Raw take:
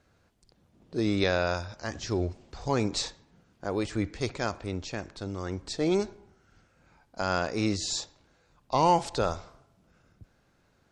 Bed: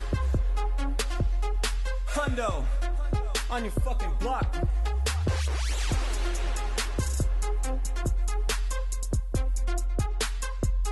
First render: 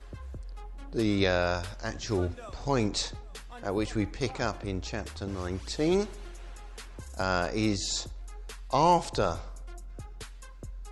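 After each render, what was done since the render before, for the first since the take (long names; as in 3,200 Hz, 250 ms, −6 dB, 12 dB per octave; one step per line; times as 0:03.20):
mix in bed −15.5 dB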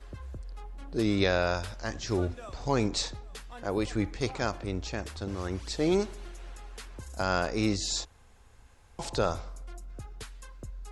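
0:08.05–0:08.99: fill with room tone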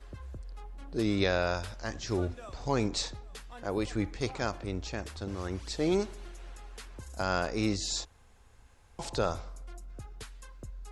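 level −2 dB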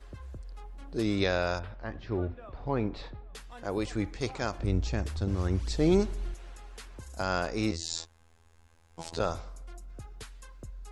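0:01.59–0:03.35: high-frequency loss of the air 430 metres
0:04.59–0:06.34: low-shelf EQ 230 Hz +11.5 dB
0:07.71–0:09.20: phases set to zero 82.6 Hz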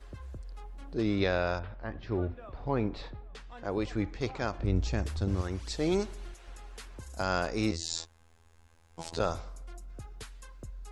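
0:00.94–0:02.03: high-frequency loss of the air 130 metres
0:03.28–0:04.76: high-frequency loss of the air 100 metres
0:05.41–0:06.48: low-shelf EQ 370 Hz −8.5 dB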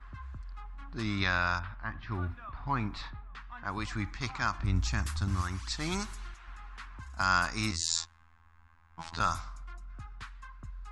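low-pass that shuts in the quiet parts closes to 1,800 Hz, open at −27.5 dBFS
drawn EQ curve 100 Hz 0 dB, 270 Hz −4 dB, 480 Hz −19 dB, 1,100 Hz +9 dB, 3,000 Hz +2 dB, 5,100 Hz +5 dB, 9,700 Hz +9 dB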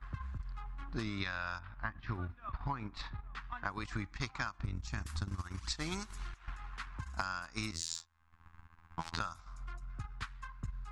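transient designer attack +9 dB, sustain −10 dB
downward compressor 12 to 1, threshold −34 dBFS, peak gain reduction 16.5 dB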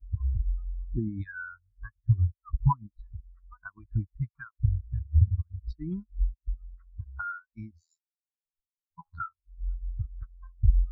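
in parallel at +1 dB: speech leveller within 4 dB 2 s
on the sum: every bin expanded away from the loudest bin 4 to 1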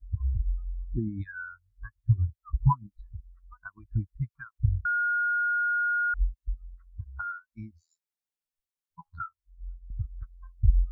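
0:02.15–0:03.15: double-tracking delay 16 ms −10 dB
0:04.85–0:06.14: beep over 1,430 Hz −23.5 dBFS
0:09.11–0:09.90: fade out, to −14.5 dB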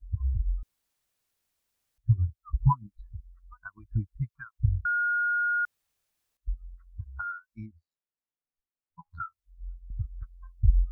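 0:00.63–0:01.98: fill with room tone
0:05.65–0:06.37: fill with room tone
0:07.66–0:09.11: high-frequency loss of the air 450 metres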